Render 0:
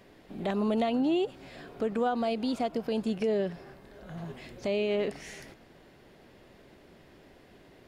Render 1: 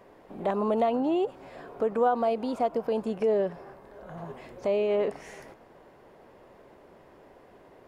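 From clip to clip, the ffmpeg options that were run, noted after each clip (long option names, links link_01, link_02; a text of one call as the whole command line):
ffmpeg -i in.wav -af "equalizer=frequency=500:width_type=o:width=1:gain=7,equalizer=frequency=1000:width_type=o:width=1:gain=10,equalizer=frequency=4000:width_type=o:width=1:gain=-5,volume=-3.5dB" out.wav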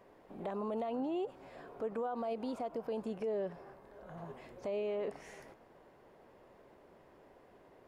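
ffmpeg -i in.wav -af "alimiter=limit=-23dB:level=0:latency=1:release=59,volume=-7dB" out.wav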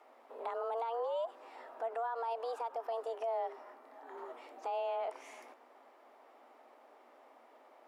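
ffmpeg -i in.wav -af "afreqshift=230" out.wav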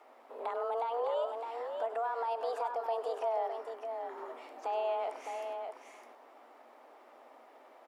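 ffmpeg -i in.wav -af "aecho=1:1:99|610:0.224|0.501,volume=2.5dB" out.wav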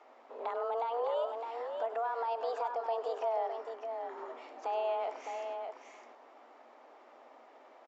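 ffmpeg -i in.wav -af "aresample=16000,aresample=44100" out.wav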